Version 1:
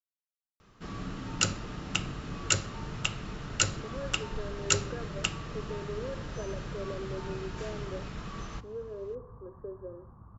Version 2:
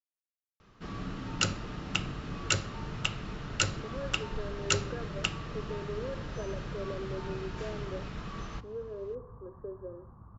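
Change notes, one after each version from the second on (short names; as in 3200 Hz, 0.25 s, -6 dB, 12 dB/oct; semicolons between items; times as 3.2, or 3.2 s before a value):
master: add LPF 5800 Hz 12 dB/oct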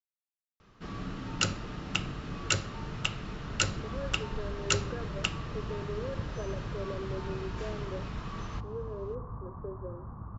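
second sound +9.5 dB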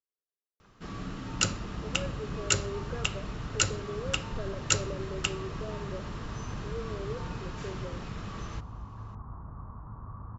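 speech: entry -2.00 s; second sound: entry -2.10 s; master: remove LPF 5800 Hz 12 dB/oct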